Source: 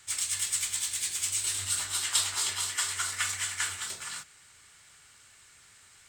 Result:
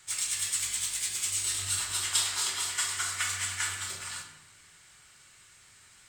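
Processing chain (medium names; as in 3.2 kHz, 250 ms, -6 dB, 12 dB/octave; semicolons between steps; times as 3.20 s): simulated room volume 530 m³, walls mixed, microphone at 1 m; trim -1.5 dB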